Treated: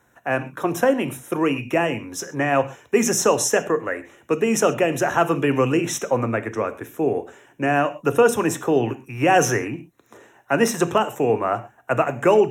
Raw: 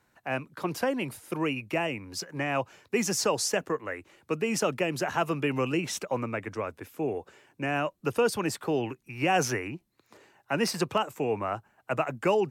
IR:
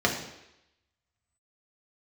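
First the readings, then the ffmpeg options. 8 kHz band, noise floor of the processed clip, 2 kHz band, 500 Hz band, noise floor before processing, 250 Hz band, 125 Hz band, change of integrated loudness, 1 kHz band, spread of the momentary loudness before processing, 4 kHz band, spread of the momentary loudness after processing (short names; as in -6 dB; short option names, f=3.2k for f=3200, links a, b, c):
+8.5 dB, -59 dBFS, +7.5 dB, +9.5 dB, -71 dBFS, +8.5 dB, +7.5 dB, +8.5 dB, +8.5 dB, 9 LU, +3.0 dB, 9 LU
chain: -filter_complex "[0:a]asuperstop=centerf=4600:order=4:qfactor=2.6,asplit=2[a][b];[b]highshelf=f=6.1k:g=11[c];[1:a]atrim=start_sample=2205,atrim=end_sample=6174[d];[c][d]afir=irnorm=-1:irlink=0,volume=-20dB[e];[a][e]amix=inputs=2:normalize=0,volume=6.5dB"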